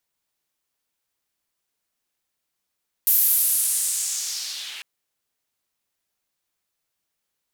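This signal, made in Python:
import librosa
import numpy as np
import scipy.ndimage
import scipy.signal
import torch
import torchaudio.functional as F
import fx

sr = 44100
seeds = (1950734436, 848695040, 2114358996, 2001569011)

y = fx.riser_noise(sr, seeds[0], length_s=1.75, colour='white', kind='bandpass', start_hz=14000.0, end_hz=2400.0, q=2.3, swell_db=-16.0, law='linear')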